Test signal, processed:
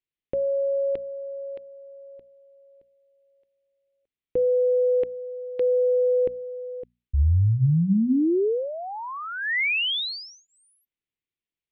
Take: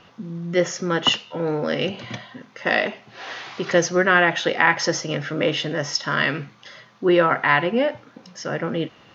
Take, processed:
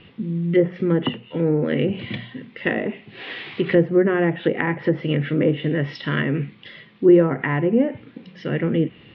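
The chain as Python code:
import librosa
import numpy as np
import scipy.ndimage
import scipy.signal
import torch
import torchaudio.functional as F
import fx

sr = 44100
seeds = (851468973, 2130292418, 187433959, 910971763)

y = scipy.signal.sosfilt(scipy.signal.cheby2(4, 40, 6600.0, 'lowpass', fs=sr, output='sos'), x)
y = fx.band_shelf(y, sr, hz=940.0, db=-11.5, octaves=1.7)
y = fx.hum_notches(y, sr, base_hz=60, count=4)
y = fx.env_lowpass_down(y, sr, base_hz=1000.0, full_db=-20.0)
y = fx.low_shelf(y, sr, hz=230.0, db=4.5)
y = y * 10.0 ** (4.5 / 20.0)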